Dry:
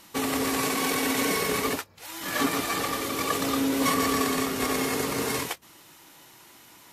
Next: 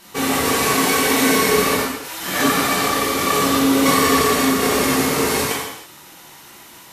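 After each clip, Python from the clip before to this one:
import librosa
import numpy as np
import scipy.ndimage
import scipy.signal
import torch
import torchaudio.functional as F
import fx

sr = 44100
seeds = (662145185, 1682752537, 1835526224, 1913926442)

y = fx.rev_gated(x, sr, seeds[0], gate_ms=350, shape='falling', drr_db=-6.5)
y = F.gain(torch.from_numpy(y), 2.5).numpy()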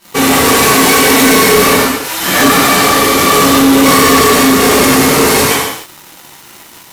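y = fx.leveller(x, sr, passes=3)
y = F.gain(torch.from_numpy(y), 1.0).numpy()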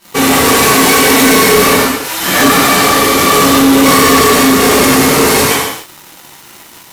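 y = fx.end_taper(x, sr, db_per_s=140.0)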